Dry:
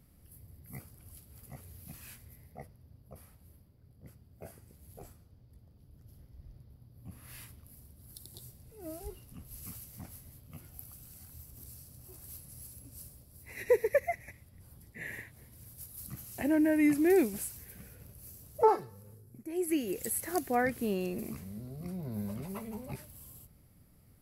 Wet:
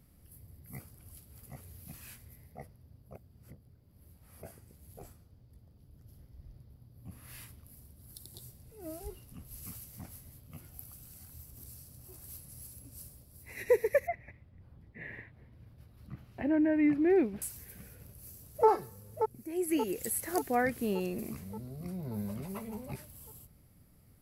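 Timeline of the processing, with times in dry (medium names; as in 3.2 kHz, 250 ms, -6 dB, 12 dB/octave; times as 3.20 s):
3.15–4.43 s: reverse
14.07–17.42 s: distance through air 370 m
17.97–18.67 s: echo throw 580 ms, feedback 60%, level -6.5 dB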